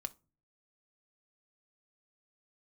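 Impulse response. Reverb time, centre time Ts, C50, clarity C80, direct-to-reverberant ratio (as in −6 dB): non-exponential decay, 2 ms, 22.5 dB, 30.5 dB, 9.0 dB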